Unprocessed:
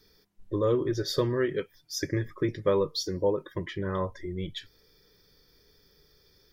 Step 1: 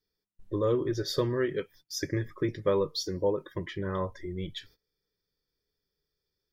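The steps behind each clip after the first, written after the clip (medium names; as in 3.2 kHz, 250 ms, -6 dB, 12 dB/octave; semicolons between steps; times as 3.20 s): gate -53 dBFS, range -21 dB; trim -1.5 dB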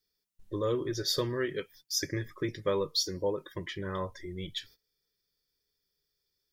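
treble shelf 2.2 kHz +10.5 dB; trim -4 dB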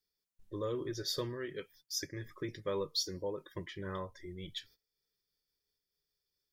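random flutter of the level, depth 60%; trim -3.5 dB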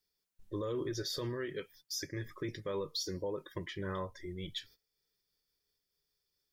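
peak limiter -31.5 dBFS, peak gain reduction 8.5 dB; trim +3 dB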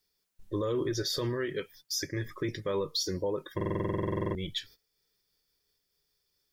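buffer glitch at 3.56 s, samples 2048, times 16; trim +6 dB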